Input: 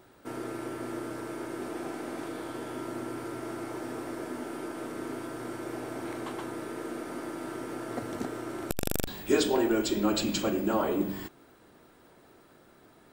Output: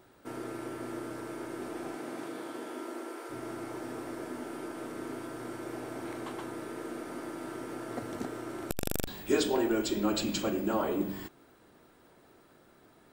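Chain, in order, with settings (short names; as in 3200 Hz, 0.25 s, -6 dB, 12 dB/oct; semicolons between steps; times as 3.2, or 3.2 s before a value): 1.95–3.29 HPF 95 Hz -> 390 Hz 24 dB/oct; gain -2.5 dB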